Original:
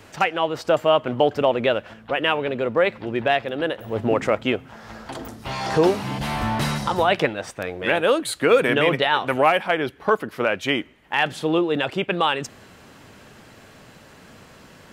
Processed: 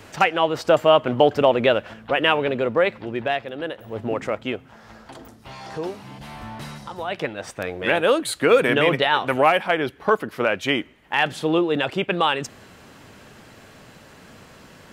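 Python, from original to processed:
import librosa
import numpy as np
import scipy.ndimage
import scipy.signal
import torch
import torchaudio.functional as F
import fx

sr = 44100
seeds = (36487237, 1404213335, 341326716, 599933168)

y = fx.gain(x, sr, db=fx.line((2.47, 2.5), (3.5, -5.0), (4.81, -5.0), (5.81, -12.0), (6.97, -12.0), (7.53, 0.5)))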